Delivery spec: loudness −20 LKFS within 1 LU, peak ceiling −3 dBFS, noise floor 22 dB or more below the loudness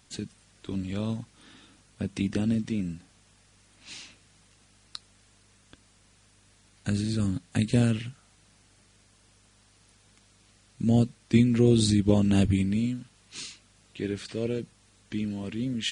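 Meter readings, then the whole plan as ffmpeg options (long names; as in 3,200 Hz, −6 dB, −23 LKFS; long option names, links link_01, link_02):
integrated loudness −27.5 LKFS; sample peak −8.0 dBFS; target loudness −20.0 LKFS
→ -af "volume=7.5dB,alimiter=limit=-3dB:level=0:latency=1"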